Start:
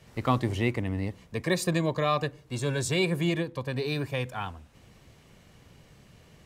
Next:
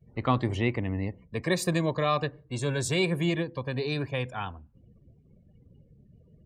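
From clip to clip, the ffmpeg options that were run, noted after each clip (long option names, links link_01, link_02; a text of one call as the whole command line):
ffmpeg -i in.wav -af "afftdn=noise_reduction=34:noise_floor=-51" out.wav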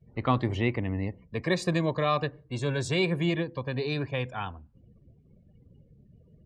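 ffmpeg -i in.wav -af "lowpass=5600" out.wav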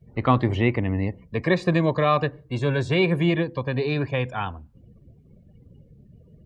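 ffmpeg -i in.wav -filter_complex "[0:a]acrossover=split=3500[link_01][link_02];[link_02]acompressor=threshold=-55dB:ratio=4:attack=1:release=60[link_03];[link_01][link_03]amix=inputs=2:normalize=0,volume=6dB" out.wav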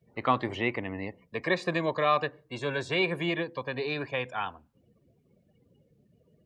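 ffmpeg -i in.wav -af "highpass=frequency=600:poles=1,volume=-2dB" out.wav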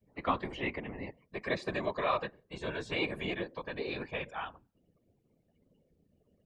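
ffmpeg -i in.wav -af "afftfilt=real='hypot(re,im)*cos(2*PI*random(0))':imag='hypot(re,im)*sin(2*PI*random(1))':win_size=512:overlap=0.75" out.wav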